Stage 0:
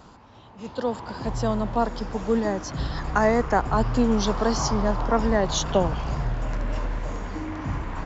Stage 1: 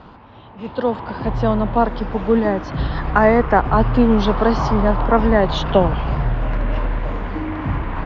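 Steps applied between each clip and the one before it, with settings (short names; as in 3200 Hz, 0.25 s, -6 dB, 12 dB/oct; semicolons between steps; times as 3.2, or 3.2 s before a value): LPF 3500 Hz 24 dB/oct; gain +7 dB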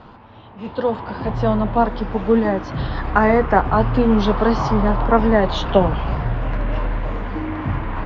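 flange 0.4 Hz, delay 8.5 ms, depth 2.5 ms, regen -58%; gain +3.5 dB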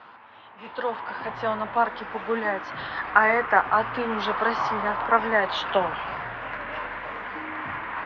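band-pass 1800 Hz, Q 1.2; gain +3 dB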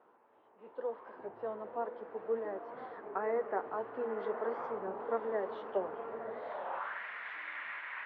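diffused feedback echo 0.996 s, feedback 42%, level -7 dB; band-pass sweep 420 Hz -> 2100 Hz, 6.4–7.05; record warp 33 1/3 rpm, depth 160 cents; gain -5.5 dB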